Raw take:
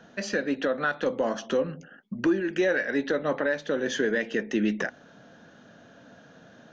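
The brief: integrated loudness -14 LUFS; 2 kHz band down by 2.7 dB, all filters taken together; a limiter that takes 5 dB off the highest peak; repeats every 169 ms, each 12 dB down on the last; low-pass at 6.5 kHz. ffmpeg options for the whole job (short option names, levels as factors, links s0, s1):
-af "lowpass=6500,equalizer=f=2000:t=o:g=-3.5,alimiter=limit=0.1:level=0:latency=1,aecho=1:1:169|338|507:0.251|0.0628|0.0157,volume=6.68"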